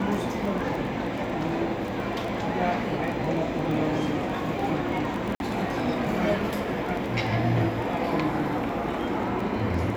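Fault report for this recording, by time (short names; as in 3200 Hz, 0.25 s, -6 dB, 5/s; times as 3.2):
crackle 12/s -30 dBFS
5.35–5.4 gap 51 ms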